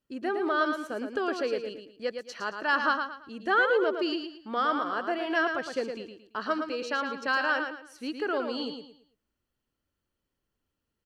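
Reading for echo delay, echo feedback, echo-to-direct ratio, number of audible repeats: 112 ms, 31%, -6.0 dB, 3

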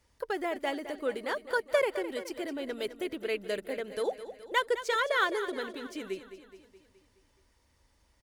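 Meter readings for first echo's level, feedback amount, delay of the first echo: -12.5 dB, 56%, 211 ms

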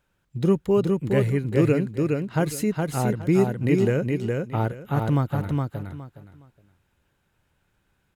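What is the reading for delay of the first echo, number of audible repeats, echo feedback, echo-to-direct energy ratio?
415 ms, 3, 22%, -3.5 dB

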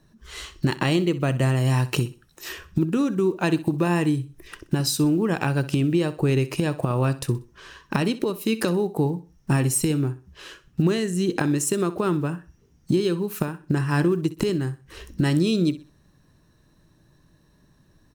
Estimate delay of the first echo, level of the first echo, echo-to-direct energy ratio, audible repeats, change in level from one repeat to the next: 63 ms, -16.0 dB, -15.5 dB, 2, -10.0 dB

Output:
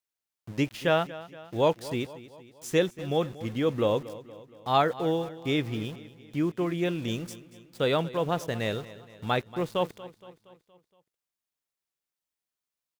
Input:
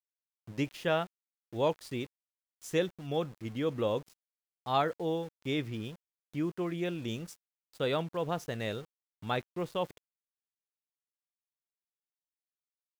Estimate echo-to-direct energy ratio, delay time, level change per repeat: -15.5 dB, 234 ms, -5.5 dB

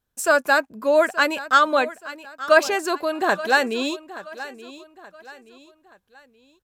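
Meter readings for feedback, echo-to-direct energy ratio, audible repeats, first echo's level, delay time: 39%, -15.5 dB, 3, -16.0 dB, 876 ms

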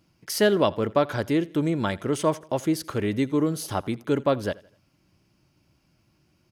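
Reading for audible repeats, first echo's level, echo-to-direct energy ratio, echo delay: 2, -22.0 dB, -21.0 dB, 83 ms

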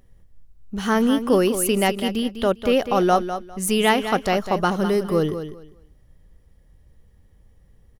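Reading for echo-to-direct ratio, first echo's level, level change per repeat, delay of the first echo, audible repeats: -10.0 dB, -10.0 dB, -14.0 dB, 201 ms, 2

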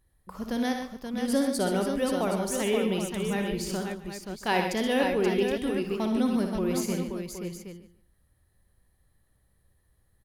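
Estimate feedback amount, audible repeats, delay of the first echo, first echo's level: no regular repeats, 8, 59 ms, -7.5 dB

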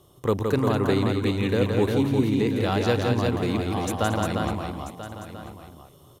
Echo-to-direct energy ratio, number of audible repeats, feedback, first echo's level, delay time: -0.5 dB, 9, no regular repeats, -4.5 dB, 168 ms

